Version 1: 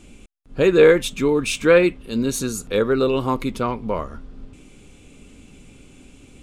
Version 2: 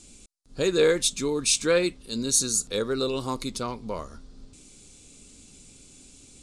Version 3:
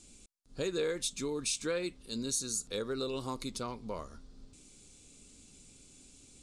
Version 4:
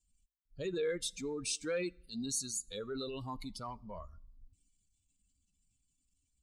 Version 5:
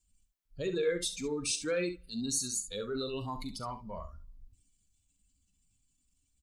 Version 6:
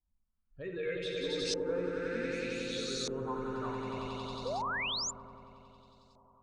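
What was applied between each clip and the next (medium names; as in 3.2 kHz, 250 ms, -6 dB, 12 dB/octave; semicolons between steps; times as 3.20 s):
high-order bell 6.3 kHz +15.5 dB; trim -8.5 dB
compression 2.5:1, threshold -26 dBFS, peak gain reduction 7 dB; trim -6.5 dB
expander on every frequency bin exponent 2; transient shaper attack -4 dB, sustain +5 dB; on a send at -23 dB: reverberation RT60 0.60 s, pre-delay 7 ms; on the sum: trim +1.5 dB
early reflections 40 ms -13 dB, 68 ms -11 dB; trim +3.5 dB
echo with a slow build-up 91 ms, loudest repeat 5, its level -4.5 dB; LFO low-pass saw up 0.65 Hz 820–5000 Hz; painted sound rise, 4.45–5.11 s, 460–7500 Hz -28 dBFS; trim -7.5 dB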